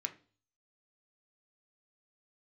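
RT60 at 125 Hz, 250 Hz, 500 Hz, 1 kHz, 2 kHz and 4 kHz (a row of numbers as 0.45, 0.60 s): 0.65, 0.50, 0.45, 0.35, 0.35, 0.45 s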